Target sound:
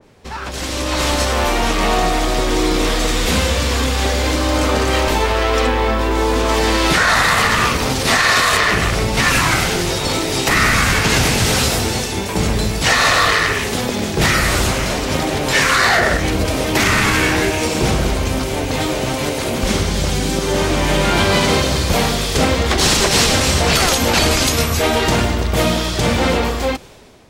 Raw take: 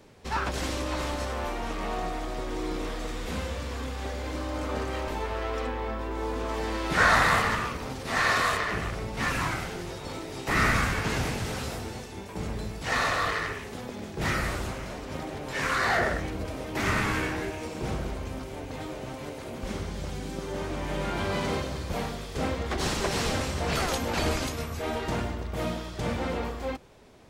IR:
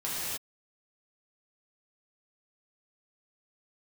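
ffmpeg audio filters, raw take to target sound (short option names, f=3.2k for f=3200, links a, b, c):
-filter_complex "[0:a]asplit=2[a][b];[b]acompressor=threshold=-34dB:ratio=6,volume=0dB[c];[a][c]amix=inputs=2:normalize=0,alimiter=limit=-18dB:level=0:latency=1:release=113,dynaudnorm=f=370:g=5:m=13dB,adynamicequalizer=threshold=0.0224:dfrequency=2300:dqfactor=0.7:tfrequency=2300:tqfactor=0.7:attack=5:release=100:ratio=0.375:range=3.5:mode=boostabove:tftype=highshelf,volume=-1dB"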